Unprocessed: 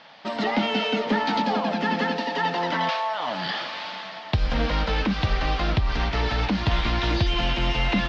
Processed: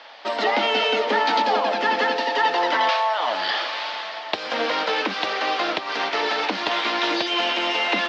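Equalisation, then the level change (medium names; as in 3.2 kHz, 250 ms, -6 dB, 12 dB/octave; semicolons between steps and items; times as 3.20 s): high-pass 340 Hz 24 dB/octave; +5.0 dB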